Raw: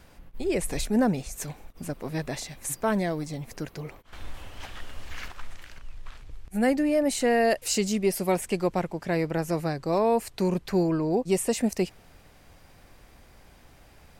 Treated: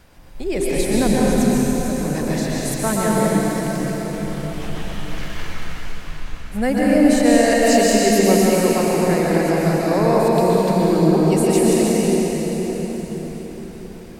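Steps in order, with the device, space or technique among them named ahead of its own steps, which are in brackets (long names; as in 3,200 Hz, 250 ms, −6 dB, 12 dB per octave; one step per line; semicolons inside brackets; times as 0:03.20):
cathedral (convolution reverb RT60 4.9 s, pre-delay 114 ms, DRR −6 dB)
level +2.5 dB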